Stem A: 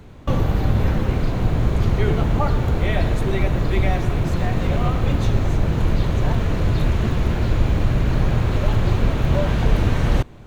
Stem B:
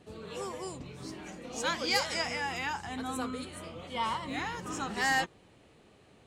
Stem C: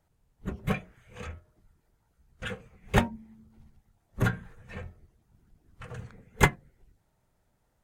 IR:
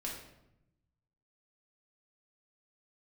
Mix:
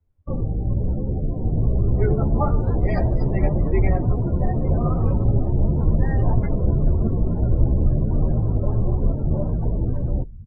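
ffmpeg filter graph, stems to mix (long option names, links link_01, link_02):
-filter_complex "[0:a]lowpass=frequency=1700:poles=1,dynaudnorm=framelen=220:gausssize=13:maxgain=11.5dB,volume=-2dB,asplit=2[link_01][link_02];[link_02]volume=-18dB[link_03];[1:a]adelay=1000,volume=-6dB[link_04];[2:a]volume=-12.5dB[link_05];[link_03]aecho=0:1:536|1072|1608|2144|2680|3216|3752:1|0.5|0.25|0.125|0.0625|0.0312|0.0156[link_06];[link_01][link_04][link_05][link_06]amix=inputs=4:normalize=0,afftdn=noise_reduction=32:noise_floor=-24,asplit=2[link_07][link_08];[link_08]adelay=11.5,afreqshift=0.88[link_09];[link_07][link_09]amix=inputs=2:normalize=1"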